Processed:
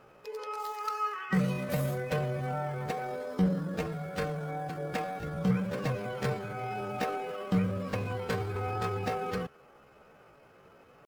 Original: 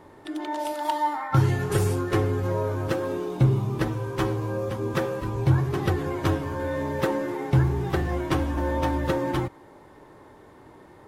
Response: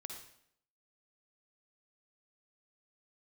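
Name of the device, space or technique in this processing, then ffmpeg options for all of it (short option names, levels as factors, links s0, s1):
chipmunk voice: -af "asetrate=62367,aresample=44100,atempo=0.707107,volume=0.422"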